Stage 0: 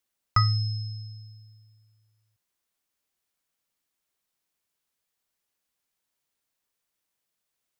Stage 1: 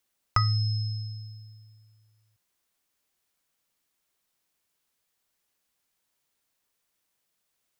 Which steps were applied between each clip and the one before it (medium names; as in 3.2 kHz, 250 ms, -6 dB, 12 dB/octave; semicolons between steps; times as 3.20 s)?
compression 2:1, threshold -29 dBFS, peak gain reduction 7.5 dB; trim +4 dB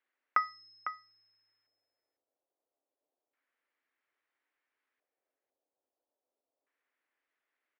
Chebyshev high-pass 260 Hz, order 5; LFO low-pass square 0.3 Hz 630–1900 Hz; delay 502 ms -10 dB; trim -4.5 dB